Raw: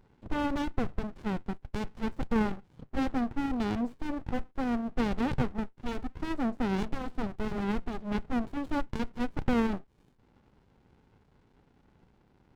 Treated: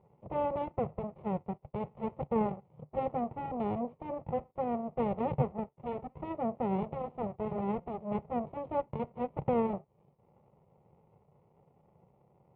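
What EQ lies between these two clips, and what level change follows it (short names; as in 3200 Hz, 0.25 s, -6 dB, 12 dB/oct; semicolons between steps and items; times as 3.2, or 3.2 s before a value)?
air absorption 250 m; speaker cabinet 130–2300 Hz, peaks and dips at 150 Hz +6 dB, 270 Hz +10 dB, 550 Hz +4 dB; fixed phaser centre 660 Hz, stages 4; +3.5 dB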